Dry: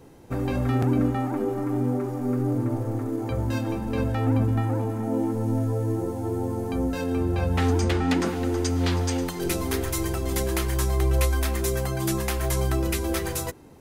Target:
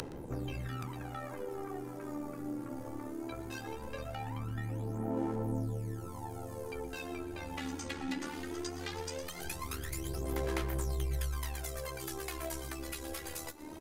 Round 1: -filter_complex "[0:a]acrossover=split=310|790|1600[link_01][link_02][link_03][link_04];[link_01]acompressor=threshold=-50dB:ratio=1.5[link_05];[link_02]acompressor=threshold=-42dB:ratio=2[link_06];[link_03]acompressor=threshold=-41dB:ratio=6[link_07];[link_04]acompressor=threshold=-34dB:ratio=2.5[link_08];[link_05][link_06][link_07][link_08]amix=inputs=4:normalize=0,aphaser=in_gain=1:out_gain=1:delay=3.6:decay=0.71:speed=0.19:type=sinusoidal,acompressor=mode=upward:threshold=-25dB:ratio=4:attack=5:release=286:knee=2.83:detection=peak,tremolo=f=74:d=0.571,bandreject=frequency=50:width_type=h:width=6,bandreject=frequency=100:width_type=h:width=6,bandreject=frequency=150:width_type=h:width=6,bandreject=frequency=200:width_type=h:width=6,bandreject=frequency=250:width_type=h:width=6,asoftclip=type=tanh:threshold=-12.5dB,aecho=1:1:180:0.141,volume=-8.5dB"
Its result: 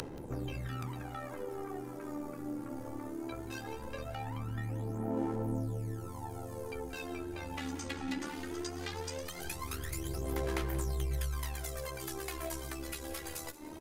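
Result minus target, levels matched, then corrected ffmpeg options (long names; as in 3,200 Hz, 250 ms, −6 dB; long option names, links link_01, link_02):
echo 61 ms late
-filter_complex "[0:a]acrossover=split=310|790|1600[link_01][link_02][link_03][link_04];[link_01]acompressor=threshold=-50dB:ratio=1.5[link_05];[link_02]acompressor=threshold=-42dB:ratio=2[link_06];[link_03]acompressor=threshold=-41dB:ratio=6[link_07];[link_04]acompressor=threshold=-34dB:ratio=2.5[link_08];[link_05][link_06][link_07][link_08]amix=inputs=4:normalize=0,aphaser=in_gain=1:out_gain=1:delay=3.6:decay=0.71:speed=0.19:type=sinusoidal,acompressor=mode=upward:threshold=-25dB:ratio=4:attack=5:release=286:knee=2.83:detection=peak,tremolo=f=74:d=0.571,bandreject=frequency=50:width_type=h:width=6,bandreject=frequency=100:width_type=h:width=6,bandreject=frequency=150:width_type=h:width=6,bandreject=frequency=200:width_type=h:width=6,bandreject=frequency=250:width_type=h:width=6,asoftclip=type=tanh:threshold=-12.5dB,aecho=1:1:119:0.141,volume=-8.5dB"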